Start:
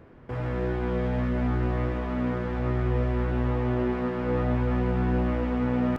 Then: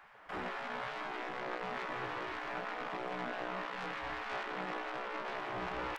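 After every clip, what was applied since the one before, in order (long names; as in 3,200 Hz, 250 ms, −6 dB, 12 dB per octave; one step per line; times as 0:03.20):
soft clipping −32 dBFS, distortion −7 dB
gate on every frequency bin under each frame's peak −15 dB weak
level +4.5 dB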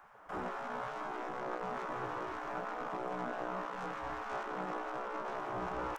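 flat-topped bell 2,900 Hz −9.5 dB
level +1.5 dB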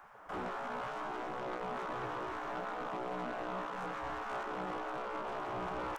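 soft clipping −35.5 dBFS, distortion −14 dB
level +2.5 dB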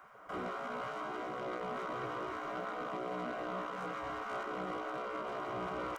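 notch comb filter 860 Hz
level +1 dB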